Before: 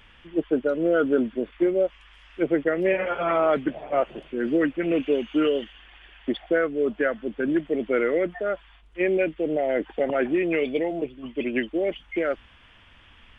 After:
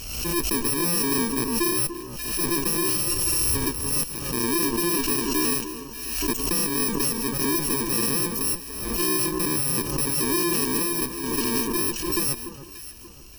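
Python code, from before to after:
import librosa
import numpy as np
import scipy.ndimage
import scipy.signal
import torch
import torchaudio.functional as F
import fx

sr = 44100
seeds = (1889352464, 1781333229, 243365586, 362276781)

y = fx.bit_reversed(x, sr, seeds[0], block=64)
y = fx.tube_stage(y, sr, drive_db=28.0, bias=0.6)
y = fx.low_shelf_res(y, sr, hz=130.0, db=8.5, q=3.0, at=(3.07, 3.64))
y = fx.echo_alternate(y, sr, ms=292, hz=1400.0, feedback_pct=56, wet_db=-9.5)
y = fx.pre_swell(y, sr, db_per_s=41.0)
y = F.gain(torch.from_numpy(y), 8.0).numpy()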